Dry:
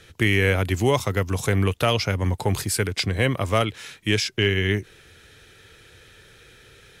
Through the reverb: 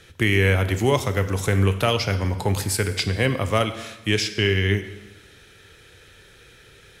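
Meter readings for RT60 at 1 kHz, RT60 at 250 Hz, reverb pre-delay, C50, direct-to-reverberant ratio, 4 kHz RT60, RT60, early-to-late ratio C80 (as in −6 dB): 1.1 s, 1.1 s, 22 ms, 11.5 dB, 9.5 dB, 0.95 s, 1.1 s, 13.0 dB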